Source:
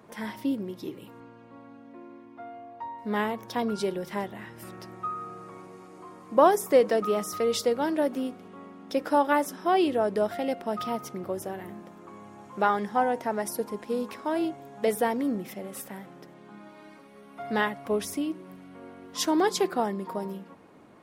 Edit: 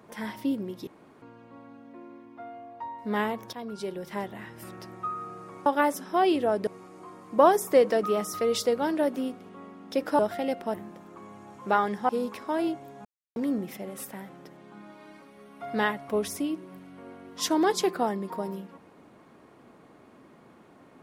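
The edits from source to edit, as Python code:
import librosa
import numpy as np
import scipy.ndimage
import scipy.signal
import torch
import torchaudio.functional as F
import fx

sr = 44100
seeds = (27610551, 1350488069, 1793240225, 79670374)

y = fx.edit(x, sr, fx.room_tone_fill(start_s=0.87, length_s=0.35),
    fx.fade_in_from(start_s=3.53, length_s=0.84, floor_db=-12.5),
    fx.move(start_s=9.18, length_s=1.01, to_s=5.66),
    fx.cut(start_s=10.74, length_s=0.91),
    fx.cut(start_s=13.0, length_s=0.86),
    fx.silence(start_s=14.82, length_s=0.31), tone=tone)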